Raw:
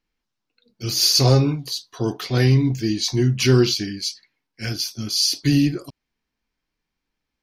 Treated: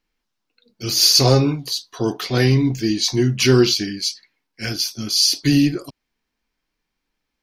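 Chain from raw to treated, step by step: peaking EQ 93 Hz -6 dB 1.6 oct; trim +3.5 dB

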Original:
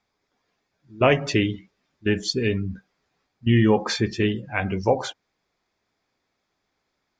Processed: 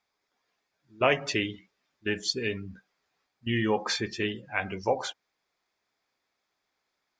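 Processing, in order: bass shelf 360 Hz -11.5 dB; trim -2.5 dB

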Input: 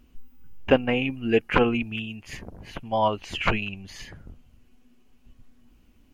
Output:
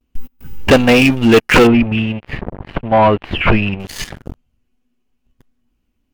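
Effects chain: gate with hold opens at -50 dBFS; waveshaping leveller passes 5; 1.67–3.80 s: distance through air 470 m

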